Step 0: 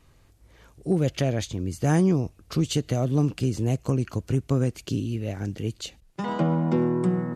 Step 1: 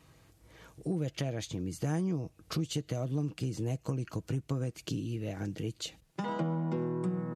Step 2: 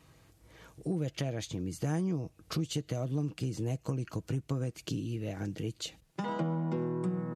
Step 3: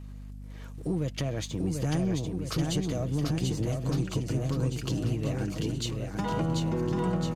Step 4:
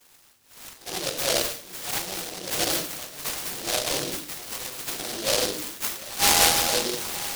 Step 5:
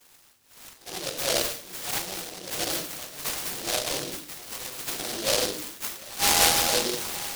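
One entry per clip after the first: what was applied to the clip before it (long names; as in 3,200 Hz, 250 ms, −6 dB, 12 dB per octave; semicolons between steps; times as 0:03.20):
high-pass filter 70 Hz; comb filter 6.3 ms, depth 35%; downward compressor 2.5 to 1, threshold −35 dBFS, peak gain reduction 13.5 dB
no processing that can be heard
leveller curve on the samples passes 1; bouncing-ball delay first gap 740 ms, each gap 0.9×, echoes 5; mains hum 50 Hz, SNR 11 dB
auto-filter high-pass saw down 0.73 Hz 510–2,000 Hz; rectangular room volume 380 cubic metres, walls furnished, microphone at 6.8 metres; short delay modulated by noise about 4,200 Hz, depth 0.29 ms; level −2 dB
amplitude tremolo 0.59 Hz, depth 39%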